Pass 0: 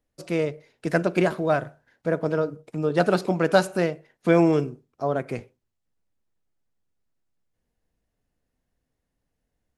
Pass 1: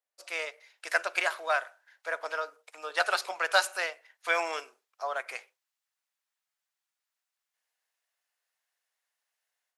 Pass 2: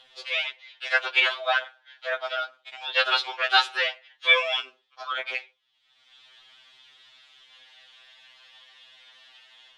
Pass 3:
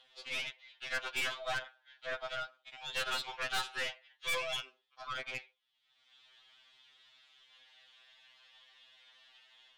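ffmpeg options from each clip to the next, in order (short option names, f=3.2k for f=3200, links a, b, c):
-filter_complex "[0:a]highpass=f=630:w=0.5412,highpass=f=630:w=1.3066,acrossover=split=1100[a][b];[b]dynaudnorm=f=190:g=3:m=11.5dB[c];[a][c]amix=inputs=2:normalize=0,volume=-7.5dB"
-af "lowpass=f=3.4k:t=q:w=5.8,acompressor=mode=upward:threshold=-35dB:ratio=2.5,afftfilt=real='re*2.45*eq(mod(b,6),0)':imag='im*2.45*eq(mod(b,6),0)':win_size=2048:overlap=0.75,volume=5dB"
-af "aeval=exprs='(tanh(15.8*val(0)+0.5)-tanh(0.5))/15.8':c=same,volume=-7dB"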